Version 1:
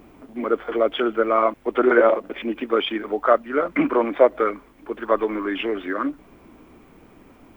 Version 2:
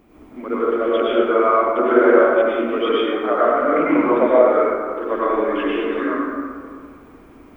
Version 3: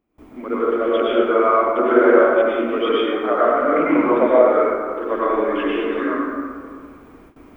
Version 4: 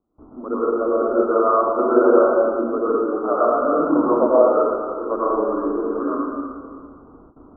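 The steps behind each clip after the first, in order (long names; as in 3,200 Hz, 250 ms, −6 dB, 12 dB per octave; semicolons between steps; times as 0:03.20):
dense smooth reverb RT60 2 s, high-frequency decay 0.45×, pre-delay 85 ms, DRR −8.5 dB; level −6 dB
noise gate with hold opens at −36 dBFS
Butterworth low-pass 1,400 Hz 96 dB per octave; level −1 dB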